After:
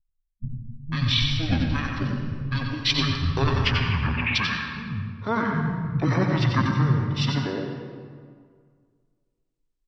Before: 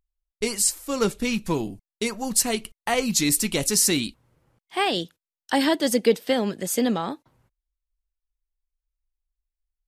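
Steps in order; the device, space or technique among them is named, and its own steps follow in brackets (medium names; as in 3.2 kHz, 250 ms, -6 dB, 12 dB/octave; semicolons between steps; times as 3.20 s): 3.22–3.85 s: steep low-pass 6.4 kHz 96 dB/octave; bands offset in time lows, highs 500 ms, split 400 Hz; monster voice (pitch shift -9.5 st; formant shift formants -5 st; bass shelf 110 Hz +7 dB; delay 91 ms -7 dB; reverberation RT60 1.9 s, pre-delay 78 ms, DRR 3.5 dB); trim -1.5 dB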